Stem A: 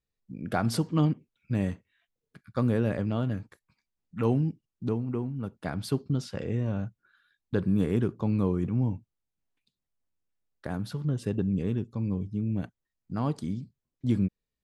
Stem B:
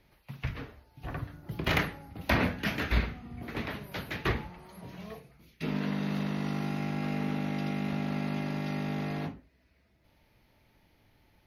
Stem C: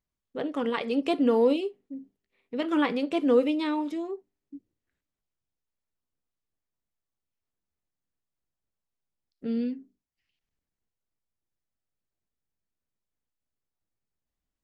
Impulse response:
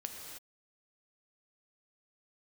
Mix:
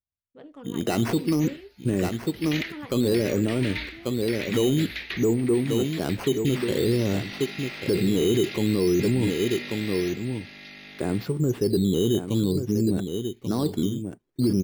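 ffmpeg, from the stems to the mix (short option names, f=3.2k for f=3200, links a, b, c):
-filter_complex "[0:a]equalizer=f=370:w=1.7:g=15,acrusher=samples=9:mix=1:aa=0.000001:lfo=1:lforange=9:lforate=0.53,adelay=350,volume=3dB,asplit=2[a][b];[b]volume=-10dB[c];[1:a]equalizer=f=125:t=o:w=1:g=-12,equalizer=f=1k:t=o:w=1:g=-6,equalizer=f=2k:t=o:w=1:g=9,equalizer=f=4k:t=o:w=1:g=10,acompressor=threshold=-36dB:ratio=3,adynamicequalizer=threshold=0.00398:dfrequency=1800:dqfactor=0.7:tfrequency=1800:tqfactor=0.7:attack=5:release=100:ratio=0.375:range=3:mode=boostabove:tftype=highshelf,adelay=850,volume=-2dB,asplit=2[d][e];[e]volume=-7dB[f];[2:a]equalizer=f=88:w=1.4:g=15,volume=-15.5dB[g];[c][f]amix=inputs=2:normalize=0,aecho=0:1:1137:1[h];[a][d][g][h]amix=inputs=4:normalize=0,alimiter=limit=-15dB:level=0:latency=1:release=10"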